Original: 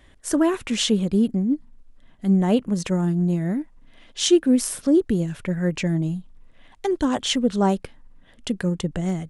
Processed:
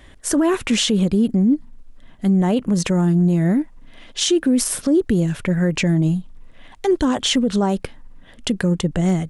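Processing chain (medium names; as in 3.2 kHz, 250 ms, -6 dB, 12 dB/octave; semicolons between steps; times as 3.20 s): peak limiter -17.5 dBFS, peak gain reduction 10.5 dB; trim +7.5 dB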